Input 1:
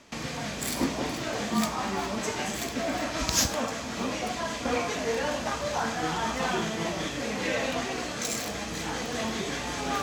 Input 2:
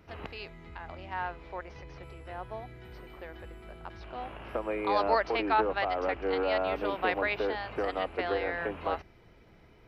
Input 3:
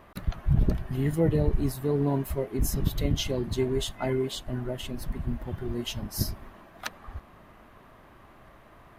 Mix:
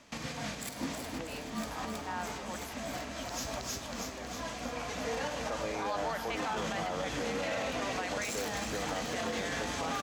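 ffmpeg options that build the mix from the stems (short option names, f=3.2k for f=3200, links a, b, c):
-filter_complex "[0:a]volume=-3.5dB,asplit=2[a][b];[b]volume=-11dB[c];[1:a]adelay=950,volume=-4dB[d];[2:a]highpass=f=280:w=0.5412,highpass=f=280:w=1.3066,volume=-18.5dB,asplit=2[e][f];[f]apad=whole_len=441955[g];[a][g]sidechaincompress=threshold=-59dB:ratio=5:attack=16:release=254[h];[c]aecho=0:1:319|638|957|1276|1595|1914|2233|2552|2871:1|0.57|0.325|0.185|0.106|0.0602|0.0343|0.0195|0.0111[i];[h][d][e][i]amix=inputs=4:normalize=0,equalizer=f=380:t=o:w=0.23:g=-8.5,alimiter=level_in=1.5dB:limit=-24dB:level=0:latency=1:release=34,volume=-1.5dB"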